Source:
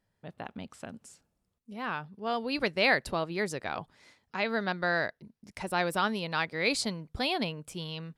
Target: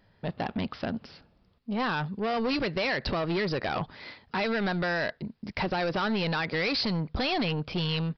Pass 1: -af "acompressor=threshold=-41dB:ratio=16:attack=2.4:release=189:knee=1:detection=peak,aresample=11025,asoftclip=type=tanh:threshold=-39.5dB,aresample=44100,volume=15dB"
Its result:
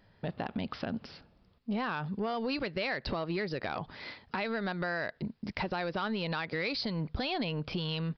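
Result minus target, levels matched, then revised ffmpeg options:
downward compressor: peak gain reduction +10.5 dB
-af "acompressor=threshold=-30dB:ratio=16:attack=2.4:release=189:knee=1:detection=peak,aresample=11025,asoftclip=type=tanh:threshold=-39.5dB,aresample=44100,volume=15dB"

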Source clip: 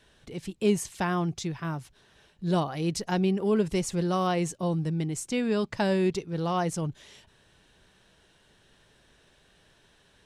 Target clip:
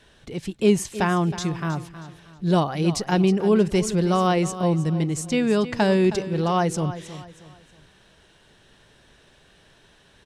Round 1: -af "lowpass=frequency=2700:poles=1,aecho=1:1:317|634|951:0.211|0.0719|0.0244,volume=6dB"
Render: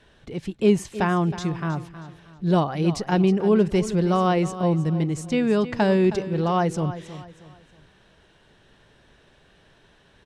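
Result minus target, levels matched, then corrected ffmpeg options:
8,000 Hz band −7.0 dB
-af "lowpass=frequency=9400:poles=1,aecho=1:1:317|634|951:0.211|0.0719|0.0244,volume=6dB"

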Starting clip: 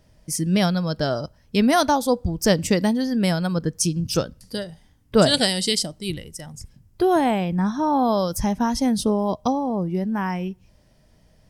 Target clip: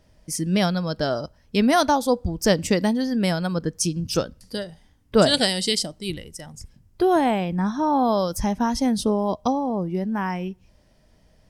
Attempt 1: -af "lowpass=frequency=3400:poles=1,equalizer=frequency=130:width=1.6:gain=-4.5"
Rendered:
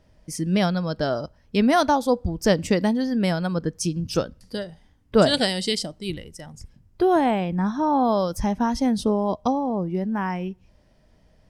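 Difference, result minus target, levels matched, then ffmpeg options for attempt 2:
8,000 Hz band −5.0 dB
-af "lowpass=frequency=9100:poles=1,equalizer=frequency=130:width=1.6:gain=-4.5"

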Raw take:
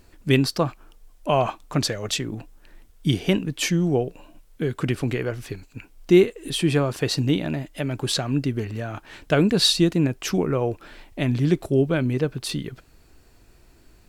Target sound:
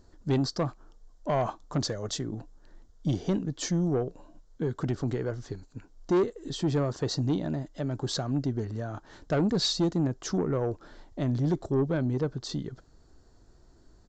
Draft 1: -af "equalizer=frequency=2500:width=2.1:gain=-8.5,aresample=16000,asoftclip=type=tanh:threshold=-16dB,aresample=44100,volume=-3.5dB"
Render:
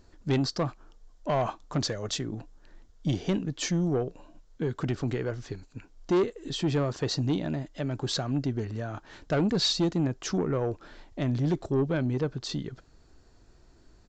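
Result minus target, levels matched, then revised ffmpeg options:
2,000 Hz band +3.0 dB
-af "equalizer=frequency=2500:width=2.1:gain=-19,aresample=16000,asoftclip=type=tanh:threshold=-16dB,aresample=44100,volume=-3.5dB"

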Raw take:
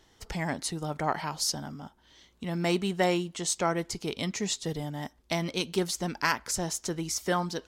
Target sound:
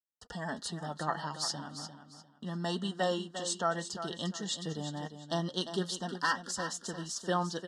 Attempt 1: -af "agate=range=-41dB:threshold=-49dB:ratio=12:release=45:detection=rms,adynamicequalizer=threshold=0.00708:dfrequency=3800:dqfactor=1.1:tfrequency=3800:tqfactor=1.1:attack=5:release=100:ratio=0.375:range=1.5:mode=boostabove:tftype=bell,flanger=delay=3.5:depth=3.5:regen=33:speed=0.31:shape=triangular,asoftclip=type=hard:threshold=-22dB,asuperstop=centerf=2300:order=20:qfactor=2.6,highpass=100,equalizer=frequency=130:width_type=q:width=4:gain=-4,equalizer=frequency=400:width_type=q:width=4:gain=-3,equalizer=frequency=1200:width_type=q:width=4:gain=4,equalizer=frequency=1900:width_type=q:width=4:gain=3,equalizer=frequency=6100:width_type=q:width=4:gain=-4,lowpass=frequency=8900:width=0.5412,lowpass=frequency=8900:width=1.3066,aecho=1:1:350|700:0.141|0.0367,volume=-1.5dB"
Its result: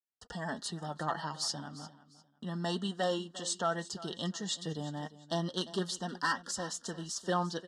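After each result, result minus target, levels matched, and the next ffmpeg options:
hard clipping: distortion +27 dB; echo-to-direct −7 dB
-af "agate=range=-41dB:threshold=-49dB:ratio=12:release=45:detection=rms,adynamicequalizer=threshold=0.00708:dfrequency=3800:dqfactor=1.1:tfrequency=3800:tqfactor=1.1:attack=5:release=100:ratio=0.375:range=1.5:mode=boostabove:tftype=bell,flanger=delay=3.5:depth=3.5:regen=33:speed=0.31:shape=triangular,asoftclip=type=hard:threshold=-16dB,asuperstop=centerf=2300:order=20:qfactor=2.6,highpass=100,equalizer=frequency=130:width_type=q:width=4:gain=-4,equalizer=frequency=400:width_type=q:width=4:gain=-3,equalizer=frequency=1200:width_type=q:width=4:gain=4,equalizer=frequency=1900:width_type=q:width=4:gain=3,equalizer=frequency=6100:width_type=q:width=4:gain=-4,lowpass=frequency=8900:width=0.5412,lowpass=frequency=8900:width=1.3066,aecho=1:1:350|700:0.141|0.0367,volume=-1.5dB"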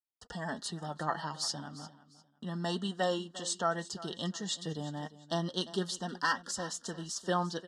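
echo-to-direct −7 dB
-af "agate=range=-41dB:threshold=-49dB:ratio=12:release=45:detection=rms,adynamicequalizer=threshold=0.00708:dfrequency=3800:dqfactor=1.1:tfrequency=3800:tqfactor=1.1:attack=5:release=100:ratio=0.375:range=1.5:mode=boostabove:tftype=bell,flanger=delay=3.5:depth=3.5:regen=33:speed=0.31:shape=triangular,asoftclip=type=hard:threshold=-16dB,asuperstop=centerf=2300:order=20:qfactor=2.6,highpass=100,equalizer=frequency=130:width_type=q:width=4:gain=-4,equalizer=frequency=400:width_type=q:width=4:gain=-3,equalizer=frequency=1200:width_type=q:width=4:gain=4,equalizer=frequency=1900:width_type=q:width=4:gain=3,equalizer=frequency=6100:width_type=q:width=4:gain=-4,lowpass=frequency=8900:width=0.5412,lowpass=frequency=8900:width=1.3066,aecho=1:1:350|700|1050:0.316|0.0822|0.0214,volume=-1.5dB"

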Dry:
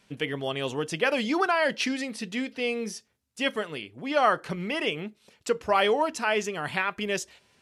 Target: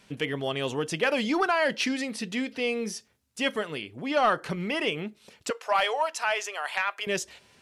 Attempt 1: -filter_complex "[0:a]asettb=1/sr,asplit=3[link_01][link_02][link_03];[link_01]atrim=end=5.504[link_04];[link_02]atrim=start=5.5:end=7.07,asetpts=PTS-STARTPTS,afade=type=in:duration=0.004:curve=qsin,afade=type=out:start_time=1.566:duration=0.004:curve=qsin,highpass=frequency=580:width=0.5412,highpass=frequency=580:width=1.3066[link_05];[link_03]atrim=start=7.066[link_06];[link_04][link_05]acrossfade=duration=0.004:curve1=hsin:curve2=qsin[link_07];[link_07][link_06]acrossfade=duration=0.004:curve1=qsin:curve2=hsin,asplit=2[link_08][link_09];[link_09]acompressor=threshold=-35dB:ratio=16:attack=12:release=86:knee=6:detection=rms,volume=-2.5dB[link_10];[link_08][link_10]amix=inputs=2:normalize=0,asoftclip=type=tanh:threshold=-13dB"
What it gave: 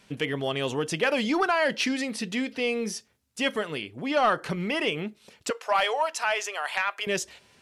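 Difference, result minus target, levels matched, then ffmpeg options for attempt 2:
downward compressor: peak gain reduction −9 dB
-filter_complex "[0:a]asettb=1/sr,asplit=3[link_01][link_02][link_03];[link_01]atrim=end=5.504[link_04];[link_02]atrim=start=5.5:end=7.07,asetpts=PTS-STARTPTS,afade=type=in:duration=0.004:curve=qsin,afade=type=out:start_time=1.566:duration=0.004:curve=qsin,highpass=frequency=580:width=0.5412,highpass=frequency=580:width=1.3066[link_05];[link_03]atrim=start=7.066[link_06];[link_04][link_05]acrossfade=duration=0.004:curve1=hsin:curve2=qsin[link_07];[link_07][link_06]acrossfade=duration=0.004:curve1=qsin:curve2=hsin,asplit=2[link_08][link_09];[link_09]acompressor=threshold=-44.5dB:ratio=16:attack=12:release=86:knee=6:detection=rms,volume=-2.5dB[link_10];[link_08][link_10]amix=inputs=2:normalize=0,asoftclip=type=tanh:threshold=-13dB"

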